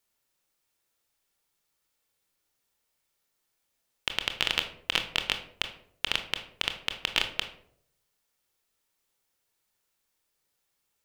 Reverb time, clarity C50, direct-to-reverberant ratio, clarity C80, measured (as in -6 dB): 0.65 s, 10.5 dB, 6.5 dB, 14.0 dB